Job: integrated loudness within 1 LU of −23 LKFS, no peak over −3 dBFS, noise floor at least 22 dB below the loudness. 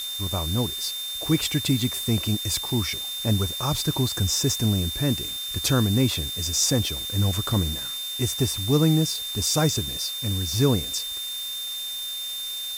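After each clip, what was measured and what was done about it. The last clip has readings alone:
interfering tone 3,600 Hz; level of the tone −30 dBFS; background noise floor −32 dBFS; target noise floor −46 dBFS; integrated loudness −24.0 LKFS; sample peak −8.5 dBFS; target loudness −23.0 LKFS
→ notch filter 3,600 Hz, Q 30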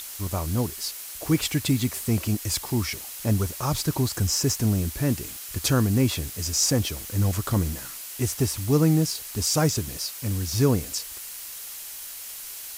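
interfering tone none found; background noise floor −38 dBFS; target noise floor −48 dBFS
→ broadband denoise 10 dB, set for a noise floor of −38 dBFS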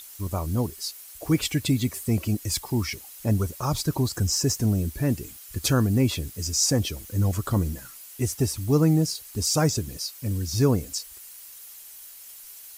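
background noise floor −45 dBFS; target noise floor −48 dBFS
→ broadband denoise 6 dB, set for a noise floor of −45 dBFS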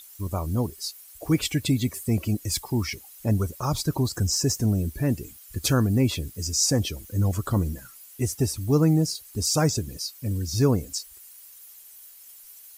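background noise floor −48 dBFS; integrated loudness −25.5 LKFS; sample peak −9.0 dBFS; target loudness −23.0 LKFS
→ level +2.5 dB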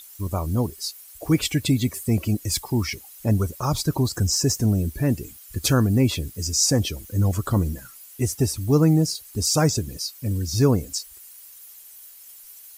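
integrated loudness −23.0 LKFS; sample peak −6.5 dBFS; background noise floor −46 dBFS

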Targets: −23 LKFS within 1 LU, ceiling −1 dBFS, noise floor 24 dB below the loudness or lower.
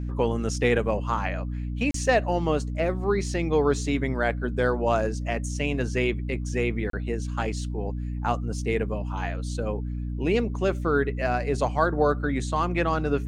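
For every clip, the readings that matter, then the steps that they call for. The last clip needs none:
number of dropouts 2; longest dropout 33 ms; mains hum 60 Hz; hum harmonics up to 300 Hz; level of the hum −28 dBFS; integrated loudness −26.5 LKFS; sample peak −8.5 dBFS; target loudness −23.0 LKFS
→ repair the gap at 0:01.91/0:06.90, 33 ms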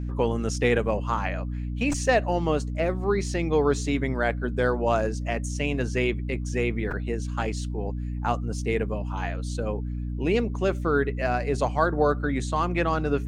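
number of dropouts 0; mains hum 60 Hz; hum harmonics up to 300 Hz; level of the hum −28 dBFS
→ mains-hum notches 60/120/180/240/300 Hz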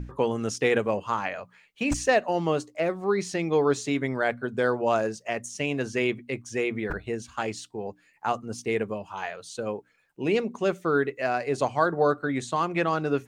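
mains hum none found; integrated loudness −27.5 LKFS; sample peak −9.0 dBFS; target loudness −23.0 LKFS
→ level +4.5 dB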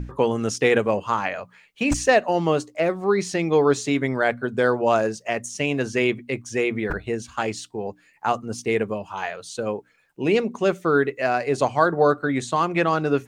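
integrated loudness −23.0 LKFS; sample peak −4.5 dBFS; background noise floor −59 dBFS

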